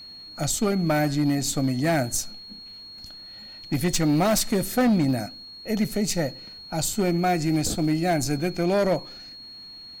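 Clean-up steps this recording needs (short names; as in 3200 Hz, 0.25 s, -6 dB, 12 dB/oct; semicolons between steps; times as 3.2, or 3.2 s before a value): clip repair -16.5 dBFS; notch 4300 Hz, Q 30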